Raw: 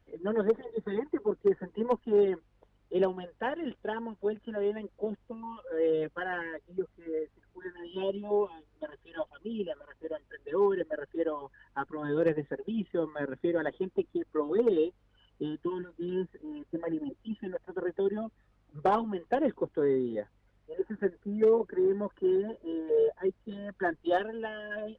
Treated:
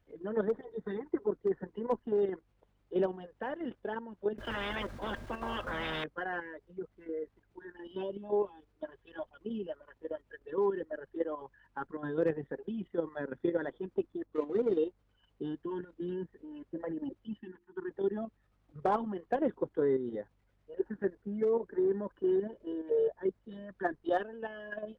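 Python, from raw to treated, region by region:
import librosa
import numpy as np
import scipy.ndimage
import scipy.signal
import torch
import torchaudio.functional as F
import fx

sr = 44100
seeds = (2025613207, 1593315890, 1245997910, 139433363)

y = fx.chain(x, sr, fx.peak_eq(hz=780.0, db=-3.5, octaves=0.66),
    fx.small_body(hz=(230.0, 610.0, 1600.0), ring_ms=90, db=12),
    fx.spectral_comp(ratio=10.0), at=(4.38, 6.04))
y = fx.chain(y, sr, fx.median_filter(points=25),
    fx.air_absorb(metres=82.0), at=(14.26, 14.77))
y = fx.chain(y, sr, fx.cheby1_bandstop(low_hz=390.0, high_hz=880.0, order=3),
    fx.hum_notches(base_hz=50, count=7),
    fx.upward_expand(threshold_db=-45.0, expansion=1.5), at=(17.39, 17.91))
y = fx.dynamic_eq(y, sr, hz=2900.0, q=1.9, threshold_db=-58.0, ratio=4.0, max_db=-5)
y = fx.level_steps(y, sr, step_db=9)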